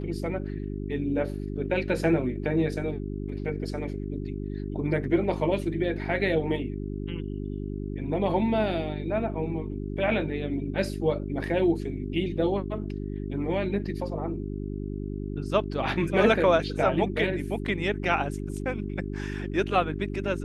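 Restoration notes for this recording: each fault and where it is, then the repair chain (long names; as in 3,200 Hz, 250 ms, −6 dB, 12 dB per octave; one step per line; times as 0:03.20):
mains hum 50 Hz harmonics 8 −33 dBFS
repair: hum removal 50 Hz, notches 8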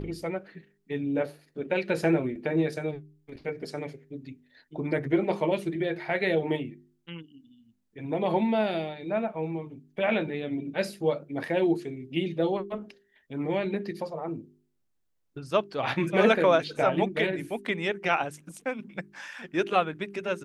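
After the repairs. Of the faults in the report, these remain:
none of them is left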